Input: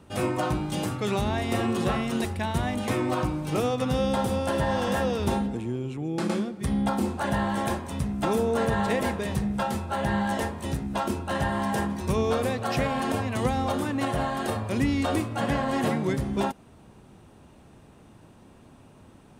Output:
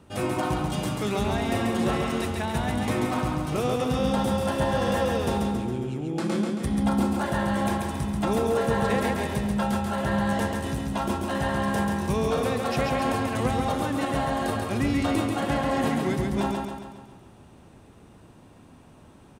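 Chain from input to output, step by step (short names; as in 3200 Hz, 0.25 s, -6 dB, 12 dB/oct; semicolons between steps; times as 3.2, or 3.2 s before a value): feedback echo 0.137 s, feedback 52%, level -3.5 dB; gain -1 dB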